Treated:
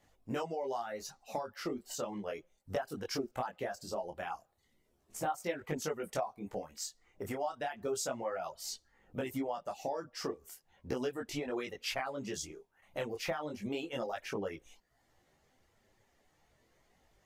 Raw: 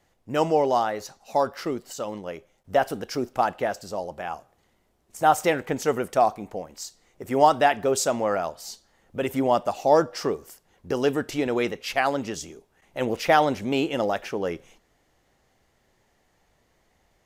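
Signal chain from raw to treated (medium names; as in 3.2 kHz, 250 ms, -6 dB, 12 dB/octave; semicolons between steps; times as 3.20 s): compression 10:1, threshold -30 dBFS, peak gain reduction 19 dB; reverb removal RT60 0.76 s; detune thickener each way 12 cents; trim +1 dB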